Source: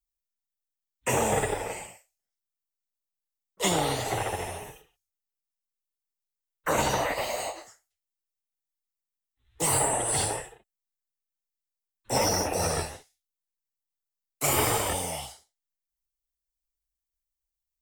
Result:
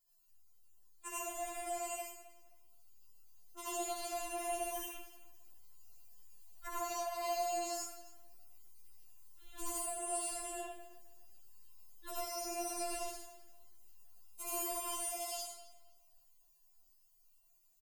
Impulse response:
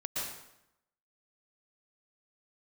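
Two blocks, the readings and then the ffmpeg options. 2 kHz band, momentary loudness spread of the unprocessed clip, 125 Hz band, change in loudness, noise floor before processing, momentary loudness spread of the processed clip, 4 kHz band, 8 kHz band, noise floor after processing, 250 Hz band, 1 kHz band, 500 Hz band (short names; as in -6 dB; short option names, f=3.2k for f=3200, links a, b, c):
-15.5 dB, 14 LU, under -35 dB, -12.5 dB, under -85 dBFS, 17 LU, -13.5 dB, -11.0 dB, -69 dBFS, -14.0 dB, -10.5 dB, -11.0 dB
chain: -filter_complex "[0:a]dynaudnorm=f=220:g=31:m=9.5dB,equalizer=f=1.9k:t=o:w=0.28:g=6.5,asplit=2[a][b];[b]adelay=17,volume=-8dB[c];[a][c]amix=inputs=2:normalize=0,alimiter=level_in=10dB:limit=-24dB:level=0:latency=1:release=215,volume=-10dB,equalizer=f=250:t=o:w=1:g=-4,equalizer=f=1k:t=o:w=1:g=5,equalizer=f=2k:t=o:w=1:g=-10,equalizer=f=16k:t=o:w=1:g=4,acrossover=split=130[d][e];[e]acompressor=threshold=-51dB:ratio=6[f];[d][f]amix=inputs=2:normalize=0,asplit=2[g][h];[h]adelay=263,lowpass=f=4.4k:p=1,volume=-16dB,asplit=2[i][j];[j]adelay=263,lowpass=f=4.4k:p=1,volume=0.26,asplit=2[k][l];[l]adelay=263,lowpass=f=4.4k:p=1,volume=0.26[m];[g][i][k][m]amix=inputs=4:normalize=0[n];[1:a]atrim=start_sample=2205,asetrate=70560,aresample=44100[o];[n][o]afir=irnorm=-1:irlink=0,afftfilt=real='re*4*eq(mod(b,16),0)':imag='im*4*eq(mod(b,16),0)':win_size=2048:overlap=0.75,volume=17dB"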